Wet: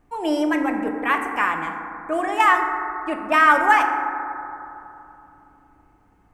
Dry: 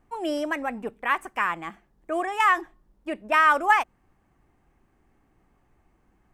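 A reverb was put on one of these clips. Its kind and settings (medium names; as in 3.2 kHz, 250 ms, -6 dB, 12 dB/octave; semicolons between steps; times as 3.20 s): FDN reverb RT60 3 s, high-frequency decay 0.25×, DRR 3 dB; trim +3 dB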